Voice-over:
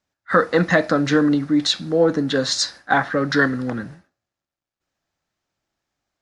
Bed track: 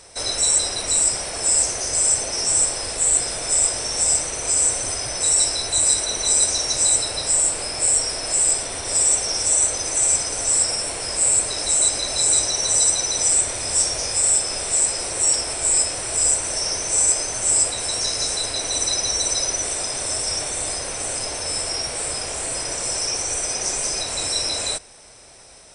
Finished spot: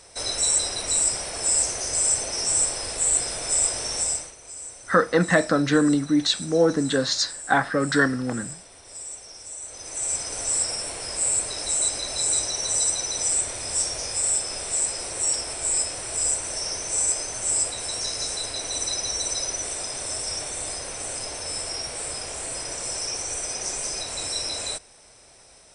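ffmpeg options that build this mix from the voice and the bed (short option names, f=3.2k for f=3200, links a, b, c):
-filter_complex "[0:a]adelay=4600,volume=-2.5dB[a];[1:a]volume=10.5dB,afade=t=out:st=3.93:d=0.42:silence=0.158489,afade=t=in:st=9.63:d=0.74:silence=0.199526[b];[a][b]amix=inputs=2:normalize=0"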